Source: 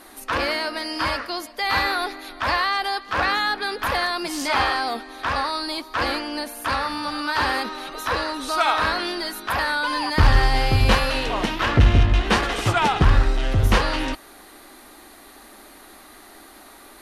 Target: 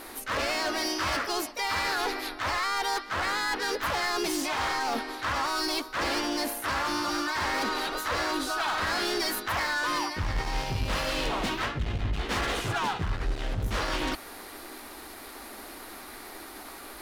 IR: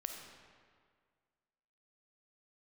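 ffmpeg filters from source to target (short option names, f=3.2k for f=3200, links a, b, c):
-filter_complex "[0:a]areverse,acompressor=threshold=-26dB:ratio=16,areverse,volume=29dB,asoftclip=hard,volume=-29dB,asplit=2[a][b];[b]asetrate=52444,aresample=44100,atempo=0.840896,volume=-3dB[c];[a][c]amix=inputs=2:normalize=0,aeval=exprs='0.0668*(cos(1*acos(clip(val(0)/0.0668,-1,1)))-cos(1*PI/2))+0.0015*(cos(7*acos(clip(val(0)/0.0668,-1,1)))-cos(7*PI/2))':c=same,volume=2dB"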